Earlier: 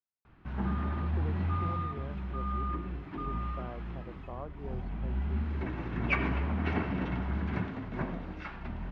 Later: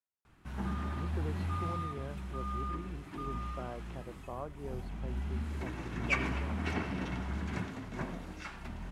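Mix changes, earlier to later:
background −4.5 dB
master: remove high-frequency loss of the air 310 metres

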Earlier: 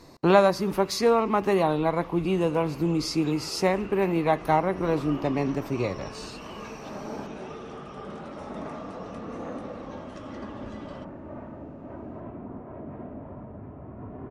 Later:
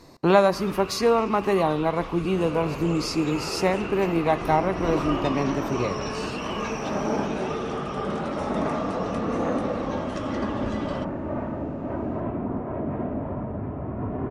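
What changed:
speech: send +9.0 dB
first sound +10.5 dB
second sound +10.5 dB

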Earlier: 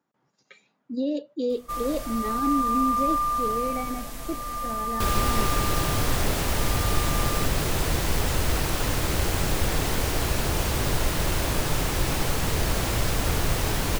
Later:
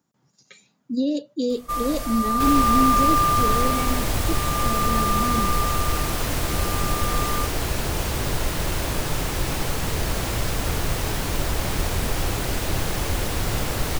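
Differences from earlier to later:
speech: add bass and treble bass +11 dB, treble +15 dB
first sound +5.0 dB
second sound: entry −2.60 s

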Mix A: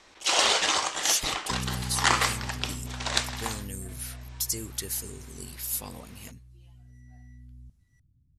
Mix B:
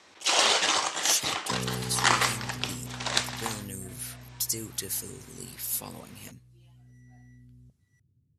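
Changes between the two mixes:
second sound: add flat-topped bell 540 Hz +12.5 dB 1.1 octaves
master: add high-pass filter 88 Hz 24 dB per octave

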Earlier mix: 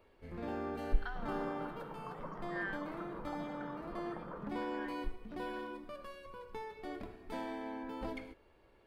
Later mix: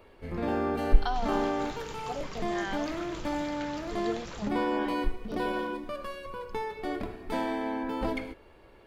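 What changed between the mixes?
speech: remove resonant band-pass 1,700 Hz, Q 4.3
first sound +10.5 dB
second sound: remove Chebyshev band-pass filter 160–1,300 Hz, order 3

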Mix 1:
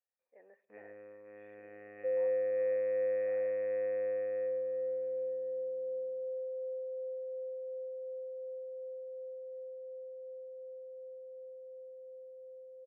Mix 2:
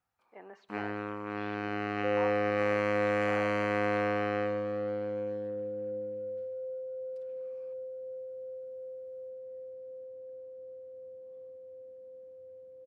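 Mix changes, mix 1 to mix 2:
first sound +6.0 dB
master: remove formant resonators in series e

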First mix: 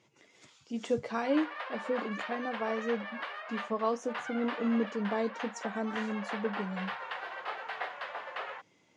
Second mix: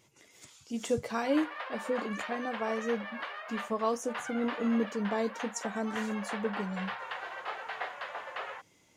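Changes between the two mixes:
speech: remove high-frequency loss of the air 110 metres
master: remove high-pass filter 130 Hz 12 dB per octave

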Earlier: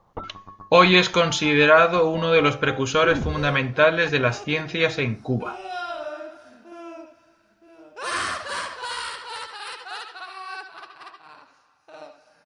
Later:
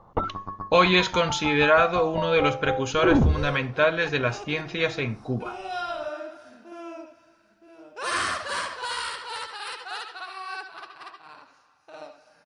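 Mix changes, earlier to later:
speech −4.0 dB
first sound +8.0 dB

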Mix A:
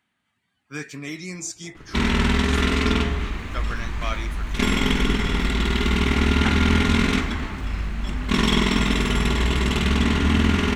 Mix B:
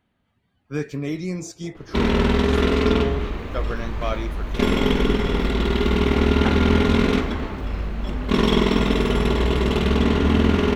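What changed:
speech: remove high-pass filter 350 Hz 6 dB per octave
master: add octave-band graphic EQ 500/2,000/8,000 Hz +10/−4/−9 dB

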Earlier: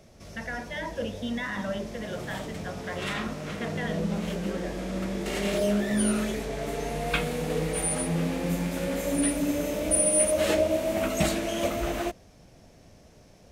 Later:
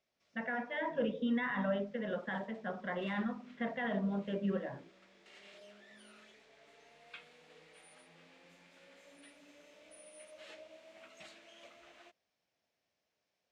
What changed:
background: add resonant band-pass 7,000 Hz, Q 2.3
master: add high-frequency loss of the air 410 metres

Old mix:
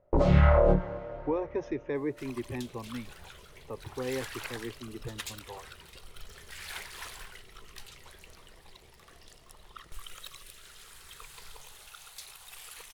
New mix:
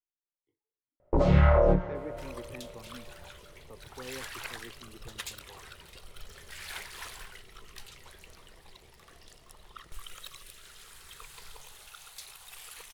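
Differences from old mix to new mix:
speech −10.0 dB
first sound: entry +1.00 s

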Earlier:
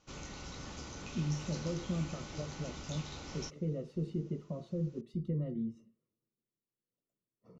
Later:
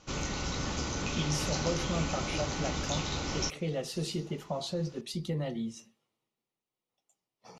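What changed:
speech: remove moving average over 54 samples
background +11.5 dB

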